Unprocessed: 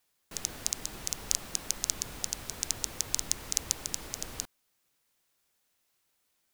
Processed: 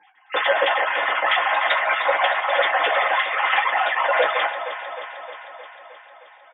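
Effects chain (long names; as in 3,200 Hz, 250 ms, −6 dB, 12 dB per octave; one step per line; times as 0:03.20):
three sine waves on the formant tracks
high-pass filter 600 Hz 6 dB per octave
double-tracking delay 16 ms −11 dB
delay that swaps between a low-pass and a high-pass 155 ms, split 870 Hz, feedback 81%, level −9 dB
convolution reverb RT60 0.15 s, pre-delay 3 ms, DRR −4.5 dB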